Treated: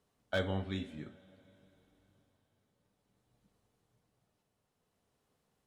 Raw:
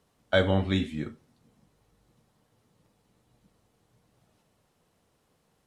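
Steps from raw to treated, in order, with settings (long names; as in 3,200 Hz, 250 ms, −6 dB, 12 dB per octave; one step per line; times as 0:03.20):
amplitude tremolo 0.56 Hz, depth 36%
coupled-rooms reverb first 0.21 s, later 4.1 s, from −21 dB, DRR 11 dB
slew-rate limiting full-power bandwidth 180 Hz
level −8.5 dB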